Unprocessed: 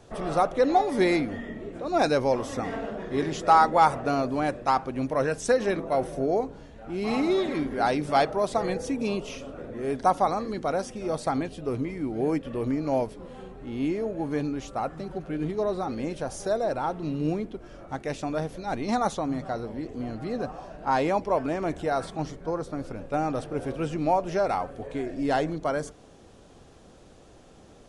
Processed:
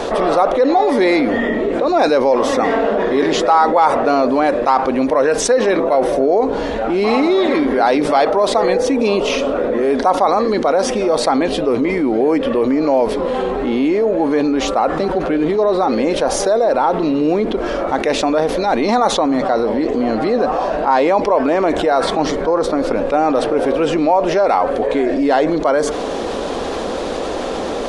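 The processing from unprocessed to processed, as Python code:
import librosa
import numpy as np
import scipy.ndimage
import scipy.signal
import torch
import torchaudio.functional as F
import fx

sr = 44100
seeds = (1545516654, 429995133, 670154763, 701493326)

y = fx.graphic_eq(x, sr, hz=(125, 250, 500, 1000, 2000, 4000), db=(-10, 7, 10, 9, 6, 8))
y = fx.env_flatten(y, sr, amount_pct=70)
y = y * librosa.db_to_amplitude(-6.5)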